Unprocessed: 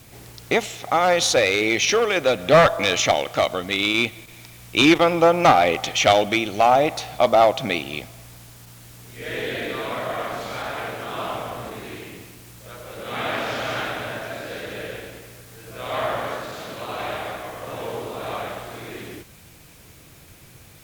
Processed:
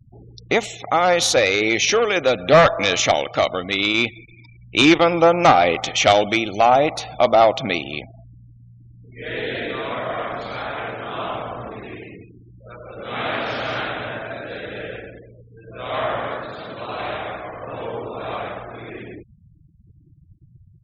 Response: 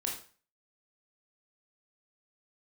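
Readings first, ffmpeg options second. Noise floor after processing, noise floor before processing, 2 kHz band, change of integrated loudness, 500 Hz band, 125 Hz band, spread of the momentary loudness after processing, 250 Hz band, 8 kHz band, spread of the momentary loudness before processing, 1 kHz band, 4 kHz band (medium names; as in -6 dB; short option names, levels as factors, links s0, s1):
-51 dBFS, -48 dBFS, +1.5 dB, +1.5 dB, +1.5 dB, +1.5 dB, 19 LU, +1.5 dB, +1.0 dB, 19 LU, +1.5 dB, +1.5 dB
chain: -af "afftfilt=real='re*gte(hypot(re,im),0.0158)':imag='im*gte(hypot(re,im),0.0158)':win_size=1024:overlap=0.75,volume=1.19"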